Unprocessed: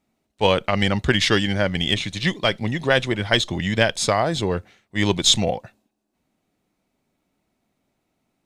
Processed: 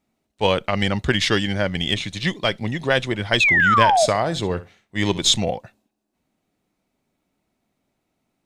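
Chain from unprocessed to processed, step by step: 3.4–4.06 painted sound fall 590–2700 Hz -15 dBFS; 3.65–5.3 flutter echo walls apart 11.1 m, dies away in 0.24 s; gain -1 dB

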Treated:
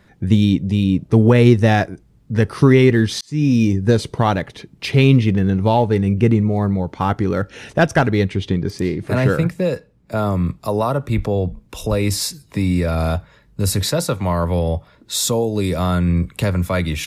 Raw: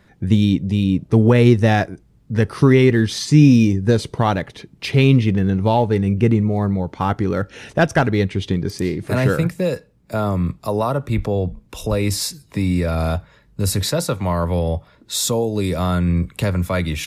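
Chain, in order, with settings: 3.21–3.74 fade in; 8.36–10.17 high shelf 5800 Hz -7 dB; gain +1 dB

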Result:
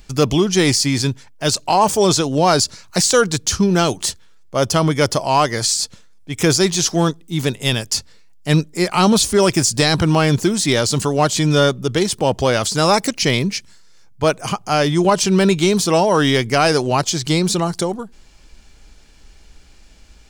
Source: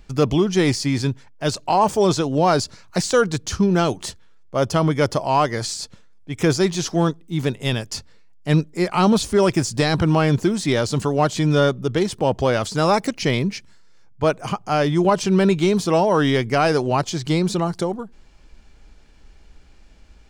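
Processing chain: high shelf 3500 Hz +11 dB; gain +2 dB

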